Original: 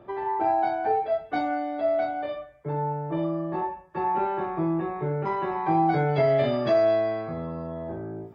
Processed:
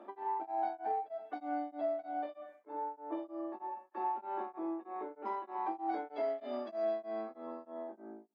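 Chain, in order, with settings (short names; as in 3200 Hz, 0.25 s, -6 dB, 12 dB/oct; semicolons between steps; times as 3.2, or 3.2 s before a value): ending faded out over 0.64 s; dynamic EQ 1900 Hz, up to -3 dB, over -44 dBFS, Q 1.4; compressor 2:1, threshold -39 dBFS, peak gain reduction 11.5 dB; added harmonics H 5 -33 dB, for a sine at -23 dBFS; rippled Chebyshev high-pass 210 Hz, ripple 6 dB; beating tremolo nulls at 3.2 Hz; gain +1 dB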